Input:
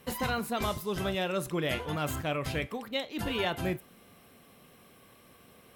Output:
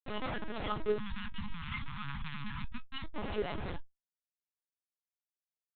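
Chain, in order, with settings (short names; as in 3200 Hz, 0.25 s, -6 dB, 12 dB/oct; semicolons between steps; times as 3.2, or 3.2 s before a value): random spectral dropouts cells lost 27%; Schmitt trigger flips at -34.5 dBFS; resonator 420 Hz, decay 0.16 s, harmonics all, mix 90%; 1.33–2.2 painted sound rise 350–760 Hz -58 dBFS; LPC vocoder at 8 kHz pitch kept; 0.98–3.04 elliptic band-stop 230–980 Hz, stop band 40 dB; gain +12 dB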